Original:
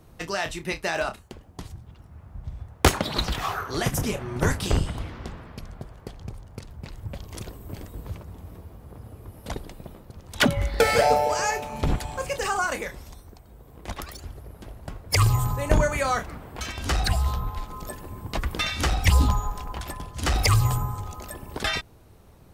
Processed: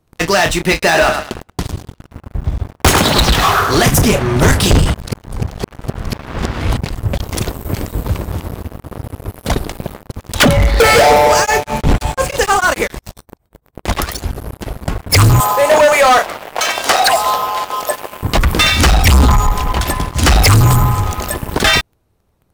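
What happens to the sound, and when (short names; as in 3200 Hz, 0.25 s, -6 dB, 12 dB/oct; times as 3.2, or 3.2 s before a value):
0.72–3.85 thinning echo 0.104 s, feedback 39%, high-pass 180 Hz, level -9 dB
4.94–6.77 reverse
7.84–8.3 echo throw 0.25 s, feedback 35%, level -6.5 dB
11.33–13.84 beating tremolo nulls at 5.1 Hz -> 9.6 Hz
15.4–18.23 resonant high-pass 620 Hz, resonance Q 1.9
whole clip: sample leveller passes 5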